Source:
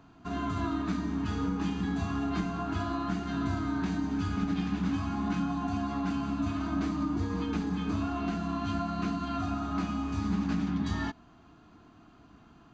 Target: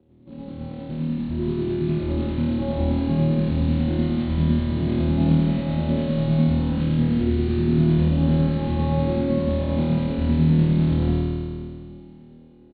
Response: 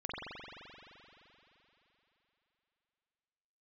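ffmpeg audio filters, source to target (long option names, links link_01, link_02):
-filter_complex "[0:a]dynaudnorm=framelen=750:gausssize=5:maxgain=16.5dB,lowpass=frequency=480:width_type=q:width=4.9,tremolo=f=10:d=0.82,acrossover=split=83|280[link_01][link_02][link_03];[link_01]acompressor=threshold=-38dB:ratio=4[link_04];[link_02]acompressor=threshold=-21dB:ratio=4[link_05];[link_03]acompressor=threshold=-25dB:ratio=4[link_06];[link_04][link_05][link_06]amix=inputs=3:normalize=0,aresample=11025,acrusher=bits=6:mode=log:mix=0:aa=0.000001,aresample=44100,asetrate=35002,aresample=44100,atempo=1.25992,asplit=2[link_07][link_08];[link_08]adelay=110,highpass=300,lowpass=3400,asoftclip=type=hard:threshold=-17.5dB,volume=-7dB[link_09];[link_07][link_09]amix=inputs=2:normalize=0[link_10];[1:a]atrim=start_sample=2205,asetrate=74970,aresample=44100[link_11];[link_10][link_11]afir=irnorm=-1:irlink=0,volume=4dB" -ar 32000 -c:a libmp3lame -b:a 40k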